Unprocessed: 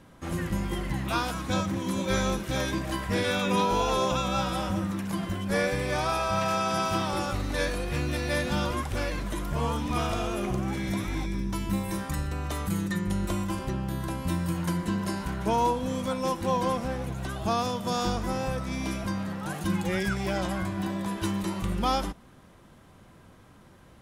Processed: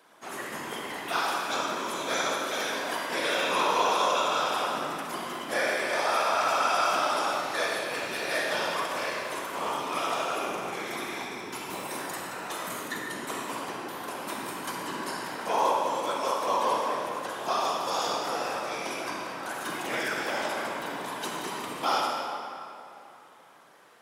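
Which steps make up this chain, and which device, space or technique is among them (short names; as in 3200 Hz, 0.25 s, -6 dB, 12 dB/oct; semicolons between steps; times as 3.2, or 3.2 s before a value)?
whispering ghost (whisperiser; HPF 560 Hz 12 dB/oct; reverb RT60 2.8 s, pre-delay 38 ms, DRR -0.5 dB)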